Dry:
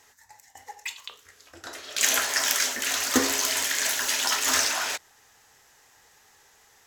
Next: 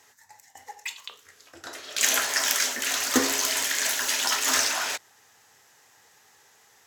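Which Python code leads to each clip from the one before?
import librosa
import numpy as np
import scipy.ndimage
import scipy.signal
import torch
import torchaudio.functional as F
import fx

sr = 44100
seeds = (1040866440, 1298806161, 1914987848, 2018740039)

y = scipy.signal.sosfilt(scipy.signal.butter(4, 93.0, 'highpass', fs=sr, output='sos'), x)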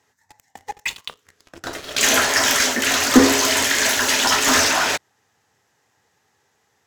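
y = fx.high_shelf(x, sr, hz=7100.0, db=-7.5)
y = fx.leveller(y, sr, passes=3)
y = fx.low_shelf(y, sr, hz=400.0, db=10.5)
y = y * 10.0 ** (-1.5 / 20.0)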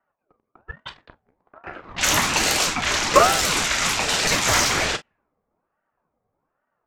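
y = fx.env_lowpass(x, sr, base_hz=470.0, full_db=-13.5)
y = fx.room_early_taps(y, sr, ms=(33, 45), db=(-15.5, -16.5))
y = fx.ring_lfo(y, sr, carrier_hz=690.0, swing_pct=55, hz=1.2)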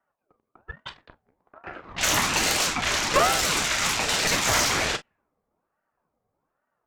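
y = fx.tube_stage(x, sr, drive_db=14.0, bias=0.5)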